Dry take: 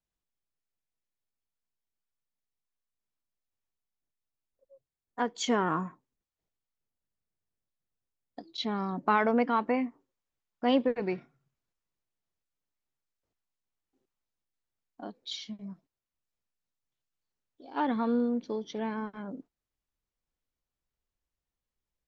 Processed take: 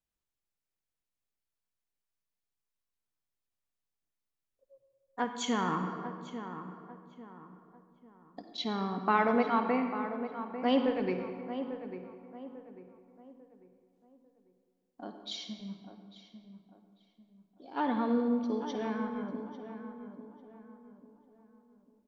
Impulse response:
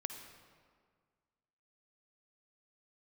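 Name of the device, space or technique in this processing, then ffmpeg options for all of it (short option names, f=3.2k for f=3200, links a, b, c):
stairwell: -filter_complex "[1:a]atrim=start_sample=2205[a];[0:a][a]afir=irnorm=-1:irlink=0,asettb=1/sr,asplit=3[b][c][d];[b]atrim=end=5.244[e];[c]atrim=start=5.24:end=5.87,asetpts=PTS-STARTPTS,afade=t=in:d=0.004:c=qsin,afade=t=out:st=0.626:d=0.004:c=qsin,equalizer=f=400:t=o:w=0.33:g=-8,equalizer=f=630:t=o:w=0.33:g=-8,equalizer=f=1.6k:t=o:w=0.33:g=-3,equalizer=f=5k:t=o:w=0.33:g=-7[f];[d]atrim=start=5.866[g];[e][f]acrossfade=d=0.004:c1=hsin:c2=qsin[h];[h][g]acrossfade=d=0.004:c1=qsin:c2=hsin,asplit=2[i][j];[j]adelay=846,lowpass=f=1.7k:p=1,volume=-10dB,asplit=2[k][l];[l]adelay=846,lowpass=f=1.7k:p=1,volume=0.38,asplit=2[m][n];[n]adelay=846,lowpass=f=1.7k:p=1,volume=0.38,asplit=2[o][p];[p]adelay=846,lowpass=f=1.7k:p=1,volume=0.38[q];[i][k][m][o][q]amix=inputs=5:normalize=0"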